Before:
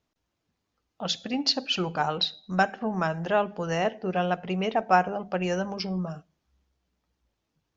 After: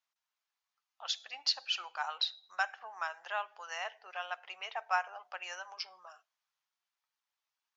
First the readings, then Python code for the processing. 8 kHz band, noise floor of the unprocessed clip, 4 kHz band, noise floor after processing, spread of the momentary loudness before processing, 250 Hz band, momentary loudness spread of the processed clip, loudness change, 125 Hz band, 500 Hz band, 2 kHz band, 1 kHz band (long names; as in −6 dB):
can't be measured, −81 dBFS, −6.0 dB, below −85 dBFS, 8 LU, below −40 dB, 11 LU, −10.0 dB, below −40 dB, −20.0 dB, −6.0 dB, −11.0 dB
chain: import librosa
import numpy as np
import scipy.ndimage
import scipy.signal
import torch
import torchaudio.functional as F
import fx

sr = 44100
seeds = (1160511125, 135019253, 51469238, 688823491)

y = scipy.signal.sosfilt(scipy.signal.butter(4, 900.0, 'highpass', fs=sr, output='sos'), x)
y = F.gain(torch.from_numpy(y), -6.0).numpy()